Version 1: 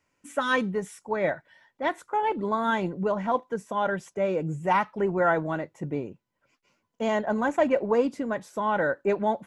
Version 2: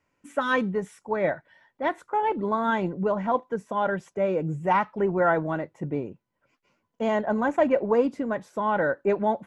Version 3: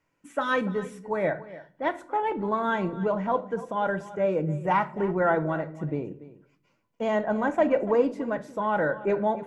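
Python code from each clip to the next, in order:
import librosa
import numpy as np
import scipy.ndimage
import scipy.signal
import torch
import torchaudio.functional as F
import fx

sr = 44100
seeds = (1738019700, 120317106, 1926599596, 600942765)

y1 = fx.high_shelf(x, sr, hz=3600.0, db=-9.5)
y1 = y1 * 10.0 ** (1.5 / 20.0)
y2 = y1 + 10.0 ** (-17.0 / 20.0) * np.pad(y1, (int(288 * sr / 1000.0), 0))[:len(y1)]
y2 = fx.room_shoebox(y2, sr, seeds[0], volume_m3=580.0, walls='furnished', distance_m=0.62)
y2 = y2 * 10.0 ** (-1.5 / 20.0)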